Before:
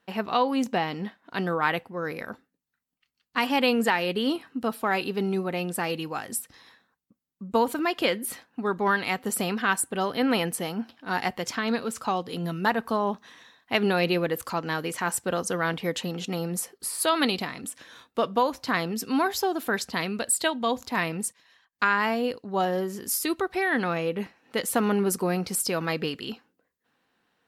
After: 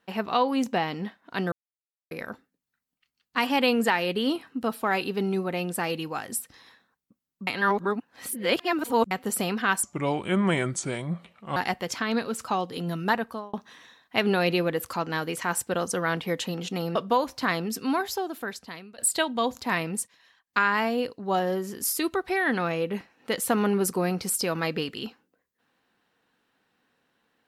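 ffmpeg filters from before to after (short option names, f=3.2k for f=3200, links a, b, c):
-filter_complex "[0:a]asplit=10[a][b][c][d][e][f][g][h][i][j];[a]atrim=end=1.52,asetpts=PTS-STARTPTS,afade=t=out:st=1.516:d=0.004:c=hsin[k];[b]atrim=start=1.52:end=2.11,asetpts=PTS-STARTPTS,volume=0[l];[c]atrim=start=2.11:end=7.472,asetpts=PTS-STARTPTS,afade=t=in:d=0.004:c=hsin[m];[d]atrim=start=7.468:end=9.112,asetpts=PTS-STARTPTS,areverse[n];[e]atrim=start=9.108:end=9.834[o];[f]atrim=start=9.83:end=11.13,asetpts=PTS-STARTPTS,asetrate=33075,aresample=44100[p];[g]atrim=start=11.126:end=13.1,asetpts=PTS-STARTPTS,afade=t=out:st=1.544:d=0.43[q];[h]atrim=start=13.1:end=16.522,asetpts=PTS-STARTPTS,afade=t=in:d=0.004:c=hsin[r];[i]atrim=start=18.208:end=20.24,asetpts=PTS-STARTPTS,afade=t=out:st=0.712:d=1.32:silence=0.0841395[s];[j]atrim=start=20.24,asetpts=PTS-STARTPTS,afade=t=in:d=0.004:c=hsin:silence=0.0841395[t];[k][l][m]concat=n=3:v=0:a=1[u];[u][n]acrossfade=d=0.004:c1=hsin:c2=hsin[v];[v][o]acrossfade=d=0.004:c1=hsin:c2=hsin[w];[w][p]acrossfade=d=0.004:c1=hsin:c2=hsin[x];[q][r]concat=n=2:v=0:a=1[y];[x][y]acrossfade=d=0.004:c1=hsin:c2=hsin[z];[s][t]concat=n=2:v=0:a=1[aa];[z][aa]acrossfade=d=0.004:c1=hsin:c2=hsin"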